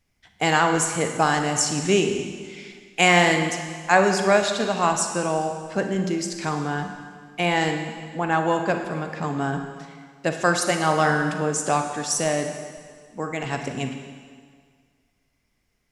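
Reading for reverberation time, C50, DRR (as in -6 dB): 1.8 s, 6.0 dB, 5.0 dB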